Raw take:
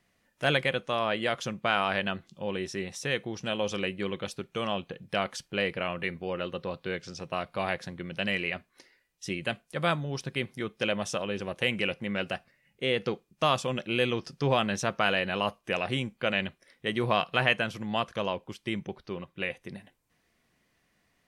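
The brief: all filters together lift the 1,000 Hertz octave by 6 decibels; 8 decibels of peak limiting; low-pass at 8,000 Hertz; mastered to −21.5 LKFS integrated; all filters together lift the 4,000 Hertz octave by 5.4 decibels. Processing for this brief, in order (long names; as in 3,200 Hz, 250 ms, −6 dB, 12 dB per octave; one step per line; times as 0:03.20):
low-pass filter 8,000 Hz
parametric band 1,000 Hz +7.5 dB
parametric band 4,000 Hz +7.5 dB
level +7 dB
brickwall limiter −4.5 dBFS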